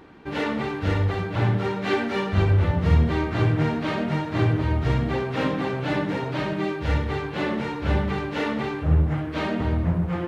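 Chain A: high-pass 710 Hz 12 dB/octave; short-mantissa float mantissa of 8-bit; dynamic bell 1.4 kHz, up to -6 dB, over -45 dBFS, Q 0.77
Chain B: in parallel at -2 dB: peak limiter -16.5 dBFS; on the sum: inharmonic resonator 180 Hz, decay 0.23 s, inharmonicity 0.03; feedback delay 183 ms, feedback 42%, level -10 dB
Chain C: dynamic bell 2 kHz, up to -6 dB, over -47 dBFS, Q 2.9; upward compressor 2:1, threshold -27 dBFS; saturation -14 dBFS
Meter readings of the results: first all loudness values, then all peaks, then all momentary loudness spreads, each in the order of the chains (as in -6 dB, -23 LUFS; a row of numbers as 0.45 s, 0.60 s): -36.0 LUFS, -31.5 LUFS, -25.5 LUFS; -20.0 dBFS, -15.5 dBFS, -14.0 dBFS; 4 LU, 5 LU, 5 LU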